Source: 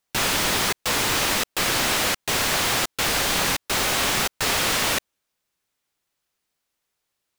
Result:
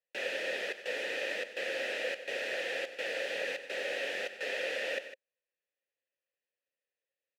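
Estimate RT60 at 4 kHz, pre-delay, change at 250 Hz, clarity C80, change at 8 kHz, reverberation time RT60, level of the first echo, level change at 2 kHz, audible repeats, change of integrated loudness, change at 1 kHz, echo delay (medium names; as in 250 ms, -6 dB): no reverb, no reverb, -20.0 dB, no reverb, -27.5 dB, no reverb, -15.0 dB, -10.0 dB, 2, -14.0 dB, -22.0 dB, 93 ms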